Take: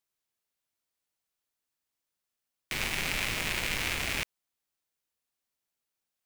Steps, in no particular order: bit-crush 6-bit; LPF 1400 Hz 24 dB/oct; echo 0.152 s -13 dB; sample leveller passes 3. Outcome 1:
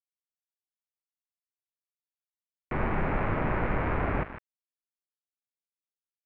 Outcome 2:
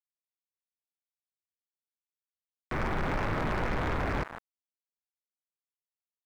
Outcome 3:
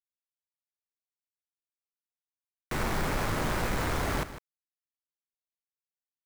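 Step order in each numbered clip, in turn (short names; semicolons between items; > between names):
echo > sample leveller > bit-crush > LPF; echo > bit-crush > LPF > sample leveller; LPF > sample leveller > bit-crush > echo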